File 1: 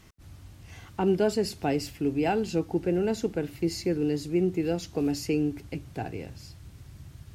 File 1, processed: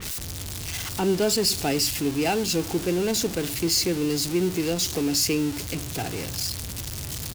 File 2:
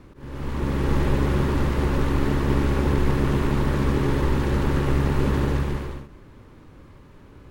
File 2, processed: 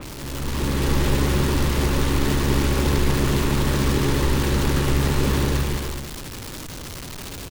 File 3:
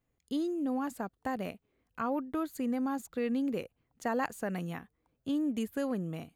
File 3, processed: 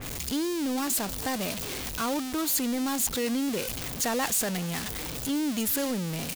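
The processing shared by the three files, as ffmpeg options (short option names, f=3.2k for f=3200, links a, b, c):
-filter_complex "[0:a]aeval=exprs='val(0)+0.5*0.0251*sgn(val(0))':c=same,acrossover=split=2400[a][b];[b]acontrast=36[c];[a][c]amix=inputs=2:normalize=0,aecho=1:1:406:0.0708,adynamicequalizer=threshold=0.00501:dfrequency=3200:dqfactor=0.7:tfrequency=3200:tqfactor=0.7:attack=5:release=100:ratio=0.375:range=3:mode=boostabove:tftype=highshelf"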